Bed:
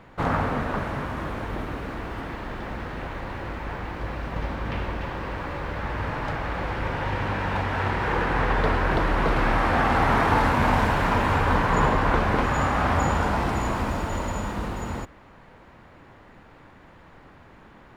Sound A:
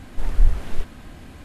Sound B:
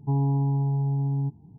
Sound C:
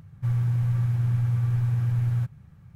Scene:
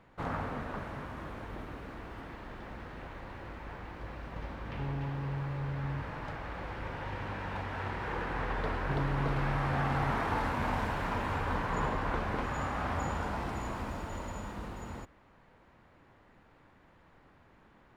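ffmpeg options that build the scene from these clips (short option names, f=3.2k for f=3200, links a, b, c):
-filter_complex "[2:a]asplit=2[a][b];[0:a]volume=-11.5dB[c];[a]acompressor=threshold=-30dB:ratio=6:attack=3.2:release=140:knee=1:detection=peak[d];[b]acompressor=threshold=-41dB:ratio=2:attack=51:release=22:knee=1:detection=peak[e];[d]atrim=end=1.58,asetpts=PTS-STARTPTS,volume=-4.5dB,afade=t=in:d=0.004:c=hsin,afade=t=out:st=1.576:d=0.004:c=hsin,adelay=4720[f];[e]atrim=end=1.58,asetpts=PTS-STARTPTS,volume=-3.5dB,afade=t=in:d=0.004:c=hsin,afade=t=out:st=1.576:d=0.004:c=hsin,adelay=388962S[g];[c][f][g]amix=inputs=3:normalize=0"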